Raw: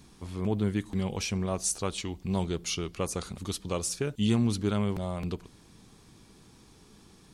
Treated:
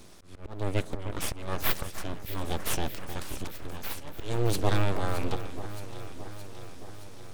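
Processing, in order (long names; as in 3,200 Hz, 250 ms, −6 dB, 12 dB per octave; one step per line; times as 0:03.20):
full-wave rectification
volume swells 354 ms
delay that swaps between a low-pass and a high-pass 310 ms, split 2,000 Hz, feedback 80%, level −10 dB
level +5.5 dB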